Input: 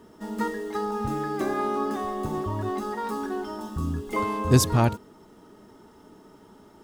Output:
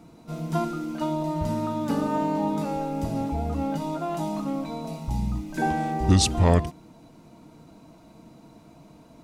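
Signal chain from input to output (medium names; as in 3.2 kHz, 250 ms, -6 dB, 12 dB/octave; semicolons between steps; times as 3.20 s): speed mistake 45 rpm record played at 33 rpm; loudness maximiser +7.5 dB; trim -6 dB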